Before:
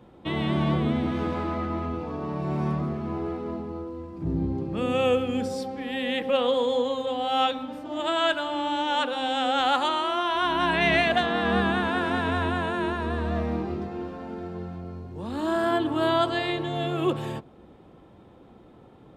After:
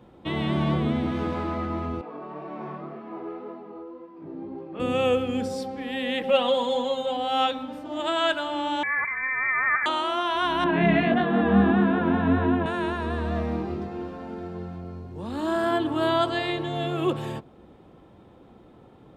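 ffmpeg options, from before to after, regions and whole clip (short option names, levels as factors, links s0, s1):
-filter_complex "[0:a]asettb=1/sr,asplit=3[s0][s1][s2];[s0]atrim=end=2.014[s3];[s1]atrim=start=2.01:end=4.8,asetpts=PTS-STARTPTS,afade=t=in:d=0.004:c=qsin,afade=t=out:st=2.786:d=0.004:c=qsin,flanger=delay=17:depth=4.8:speed=1.9,highpass=330,lowpass=2700[s4];[s2]atrim=start=4.796[s5];[s3][s4]acrossfade=d=0.004:c1=hsin:c2=qsin[s6];[s6][s5]acrossfade=d=0.004:c1=qsin:c2=hsin,asettb=1/sr,asplit=3[s7][s8][s9];[s7]atrim=end=6.234[s10];[s8]atrim=start=6.23:end=7.17,asetpts=PTS-STARTPTS,afade=t=in:d=0.004:c=qsin,afade=t=out:st=0.936:d=0.004:c=qsin,equalizer=f=2800:t=o:w=0.24:g=3,aecho=1:1:5.2:0.69,atrim=end_sample=41454[s11];[s9]atrim=start=7.166[s12];[s10][s11]acrossfade=d=0.004:c1=hsin:c2=qsin[s13];[s13][s12]acrossfade=d=0.004:c1=qsin:c2=hsin,asettb=1/sr,asplit=3[s14][s15][s16];[s14]atrim=end=8.834[s17];[s15]atrim=start=8.83:end=9.86,asetpts=PTS-STARTPTS,afade=t=in:d=0.004:c=qsin,afade=t=out:st=1.026:d=0.004:c=qsin,bandreject=f=1200:w=19,lowpass=f=2200:t=q:w=0.5098,lowpass=f=2200:t=q:w=0.6013,lowpass=f=2200:t=q:w=0.9,lowpass=f=2200:t=q:w=2.563,afreqshift=-2600[s18];[s16]atrim=start=9.856[s19];[s17][s18]acrossfade=d=0.004:c1=hsin:c2=qsin[s20];[s20][s19]acrossfade=d=0.004:c1=qsin:c2=hsin,asettb=1/sr,asplit=3[s21][s22][s23];[s21]atrim=end=10.644[s24];[s22]atrim=start=10.64:end=12.66,asetpts=PTS-STARTPTS,afade=t=in:d=0.004:c=qsin,afade=t=out:st=2.016:d=0.004:c=qsin,lowpass=2400,equalizer=f=220:t=o:w=2.1:g=11.5,flanger=delay=19.5:depth=4.6:speed=1.6[s25];[s23]atrim=start=12.656[s26];[s24][s25]acrossfade=d=0.004:c1=hsin:c2=qsin[s27];[s27][s26]acrossfade=d=0.004:c1=qsin:c2=hsin"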